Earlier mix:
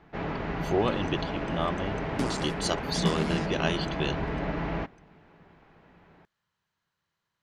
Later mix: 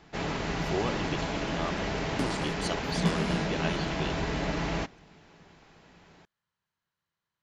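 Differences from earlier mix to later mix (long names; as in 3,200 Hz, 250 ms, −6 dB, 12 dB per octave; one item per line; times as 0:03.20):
speech −5.5 dB
first sound: remove low-pass filter 2,100 Hz 12 dB per octave
second sound: send −11.5 dB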